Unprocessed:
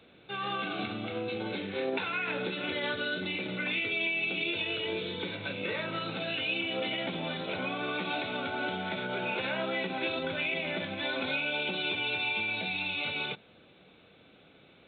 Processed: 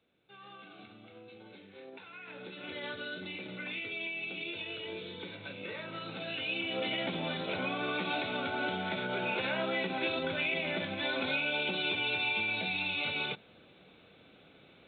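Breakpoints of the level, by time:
0:02.06 −17.5 dB
0:02.79 −7.5 dB
0:05.85 −7.5 dB
0:06.97 −0.5 dB

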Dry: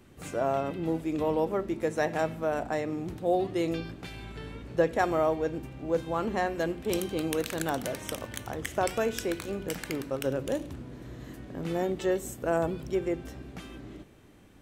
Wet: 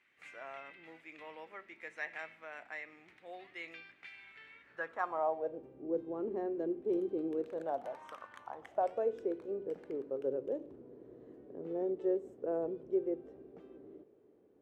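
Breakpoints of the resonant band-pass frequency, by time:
resonant band-pass, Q 3.9
0:04.57 2,100 Hz
0:05.81 380 Hz
0:07.39 380 Hz
0:08.22 1,300 Hz
0:09.21 430 Hz

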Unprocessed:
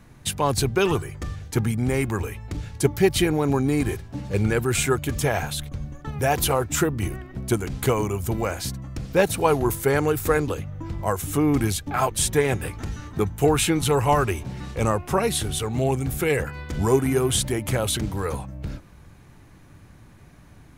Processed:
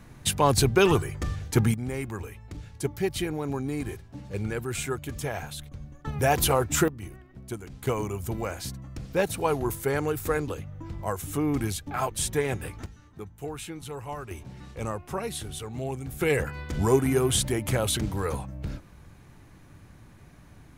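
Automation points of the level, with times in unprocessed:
+1 dB
from 0:01.74 −9 dB
from 0:06.05 −1 dB
from 0:06.88 −13 dB
from 0:07.87 −6 dB
from 0:12.86 −17 dB
from 0:14.31 −10 dB
from 0:16.21 −2 dB

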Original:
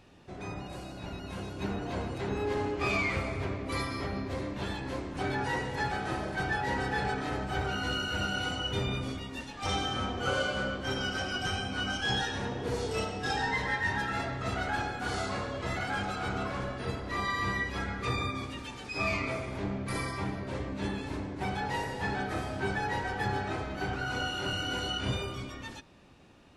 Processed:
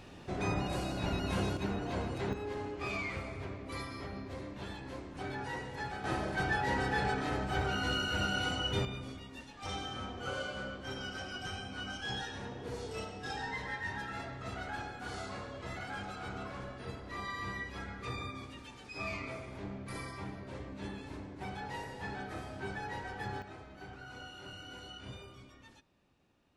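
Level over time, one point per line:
+6 dB
from 0:01.57 −1.5 dB
from 0:02.33 −8 dB
from 0:06.04 −1 dB
from 0:08.85 −8.5 dB
from 0:23.42 −15 dB

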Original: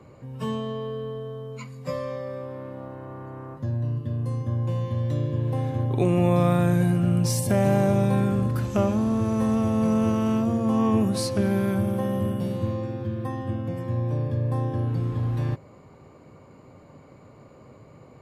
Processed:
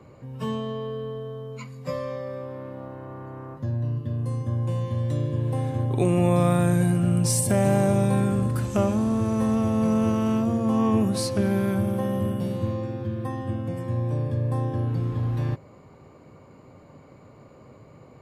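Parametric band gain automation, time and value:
parametric band 8,700 Hz 0.48 octaves
0:04.04 −2 dB
0:04.44 +9.5 dB
0:08.92 +9.5 dB
0:09.54 +1.5 dB
0:13.09 +1.5 dB
0:13.69 +8 dB
0:14.31 +8 dB
0:15.06 −1.5 dB

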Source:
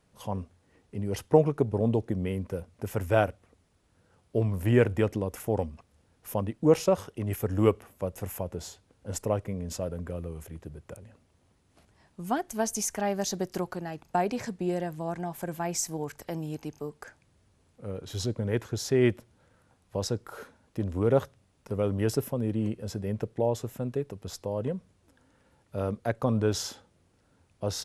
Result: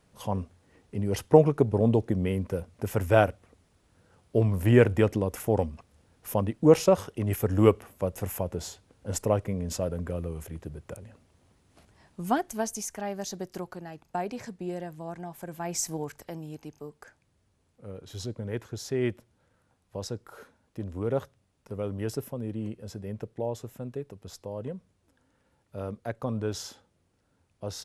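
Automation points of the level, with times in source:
0:12.34 +3 dB
0:12.83 −5 dB
0:15.49 −5 dB
0:15.89 +1.5 dB
0:16.39 −5 dB

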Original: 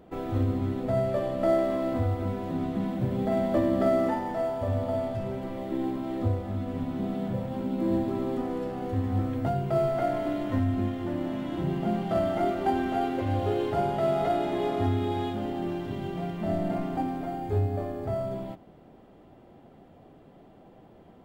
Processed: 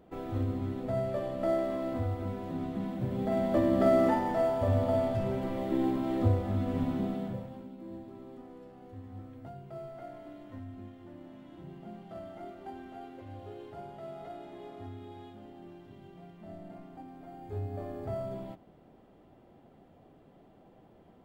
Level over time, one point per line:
0:02.98 −5.5 dB
0:04.08 +1 dB
0:06.89 +1 dB
0:07.31 −6 dB
0:07.77 −18 dB
0:17.04 −18 dB
0:17.95 −5.5 dB

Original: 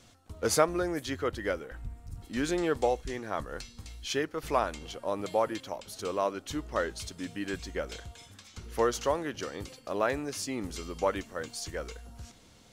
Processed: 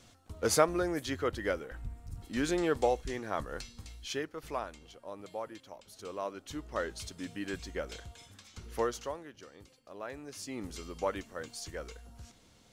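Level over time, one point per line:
0:03.68 −1 dB
0:04.89 −12 dB
0:05.62 −12 dB
0:07.00 −3 dB
0:08.75 −3 dB
0:09.32 −15 dB
0:09.98 −15 dB
0:10.61 −4.5 dB

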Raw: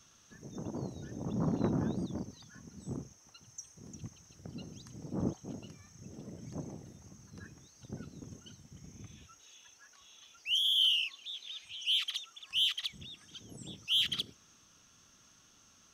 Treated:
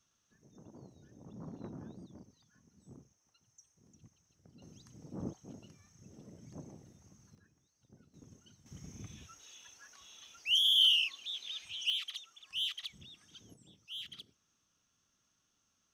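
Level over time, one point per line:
−15 dB
from 0:04.62 −7 dB
from 0:07.35 −18 dB
from 0:08.14 −9 dB
from 0:08.66 +2 dB
from 0:11.90 −6 dB
from 0:13.54 −15 dB

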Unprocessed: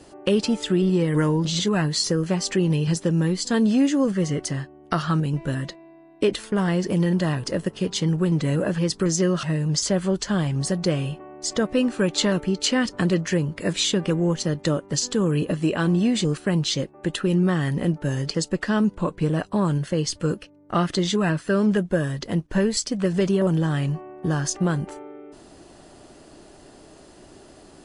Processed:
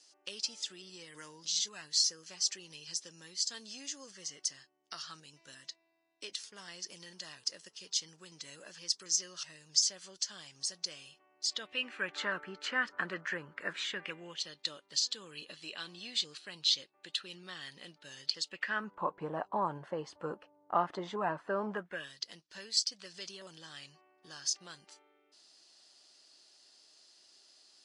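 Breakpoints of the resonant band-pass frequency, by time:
resonant band-pass, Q 2.8
0:11.32 5,500 Hz
0:12.19 1,500 Hz
0:13.79 1,500 Hz
0:14.54 4,100 Hz
0:18.39 4,100 Hz
0:19.05 890 Hz
0:21.72 890 Hz
0:22.14 4,800 Hz

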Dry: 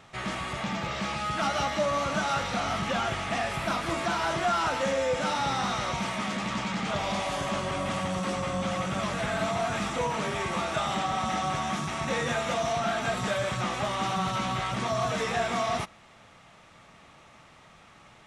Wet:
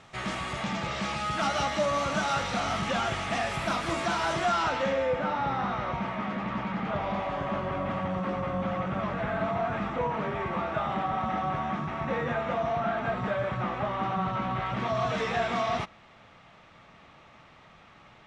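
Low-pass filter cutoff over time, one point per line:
0:04.39 10,000 Hz
0:04.74 4,500 Hz
0:05.24 1,800 Hz
0:14.49 1,800 Hz
0:15.14 4,200 Hz

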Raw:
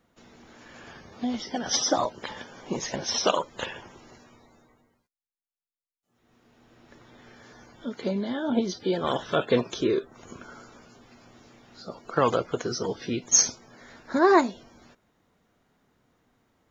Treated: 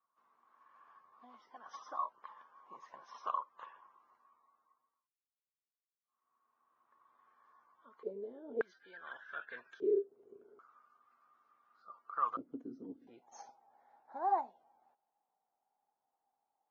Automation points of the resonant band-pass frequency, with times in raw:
resonant band-pass, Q 16
1,100 Hz
from 0:08.03 440 Hz
from 0:08.61 1,600 Hz
from 0:09.80 410 Hz
from 0:10.59 1,200 Hz
from 0:12.37 270 Hz
from 0:13.07 810 Hz

